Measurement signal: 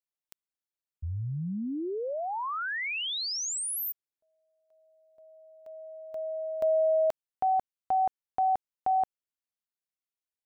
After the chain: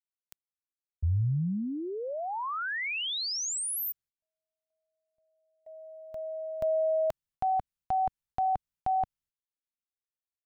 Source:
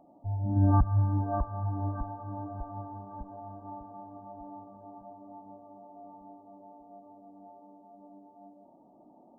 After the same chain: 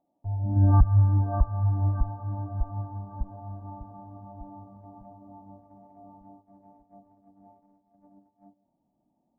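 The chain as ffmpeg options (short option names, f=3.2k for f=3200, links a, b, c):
-af "agate=range=-18dB:threshold=-47dB:ratio=3:release=176:detection=rms,asubboost=boost=6:cutoff=160"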